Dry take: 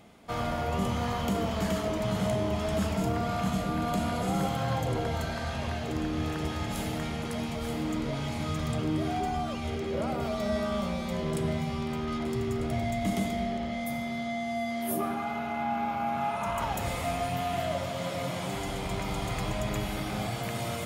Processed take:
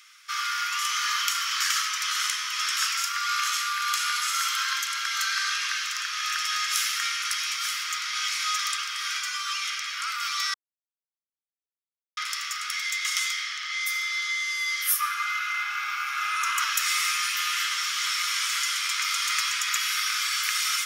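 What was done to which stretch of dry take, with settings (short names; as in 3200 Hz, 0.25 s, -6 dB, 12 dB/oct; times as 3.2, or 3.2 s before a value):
10.54–12.17 mute
12.96–14.22 bell 12000 Hz -6 dB 0.43 oct
whole clip: steep high-pass 1200 Hz 72 dB/oct; bell 5600 Hz +11 dB 0.39 oct; AGC gain up to 4 dB; gain +8.5 dB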